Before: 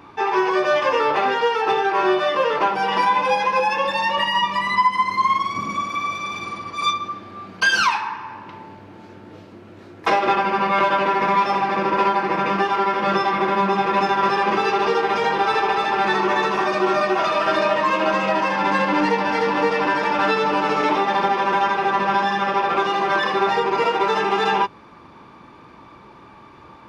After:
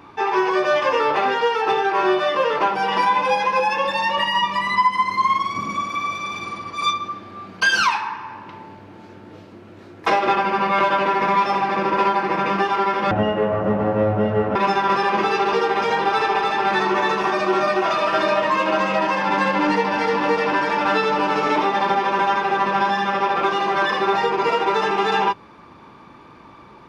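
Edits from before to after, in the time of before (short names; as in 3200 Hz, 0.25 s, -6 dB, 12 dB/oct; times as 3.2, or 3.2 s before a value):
13.11–13.89 speed 54%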